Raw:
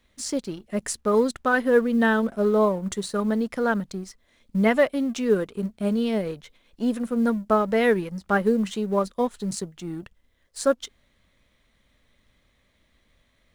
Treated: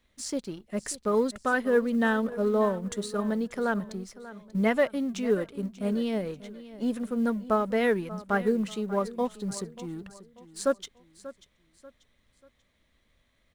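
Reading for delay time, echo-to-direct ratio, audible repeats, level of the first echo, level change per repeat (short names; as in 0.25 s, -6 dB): 0.588 s, -16.0 dB, 3, -16.5 dB, -8.5 dB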